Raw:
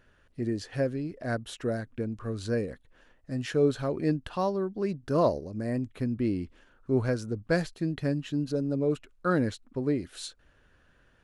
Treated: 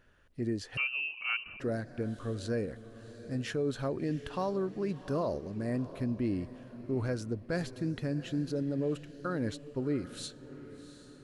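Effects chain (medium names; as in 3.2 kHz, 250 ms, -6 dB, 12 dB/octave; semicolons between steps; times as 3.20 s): peak limiter -21.5 dBFS, peak gain reduction 8.5 dB; echo that smears into a reverb 731 ms, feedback 45%, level -14.5 dB; 0.77–1.60 s: frequency inversion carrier 2.9 kHz; trim -2.5 dB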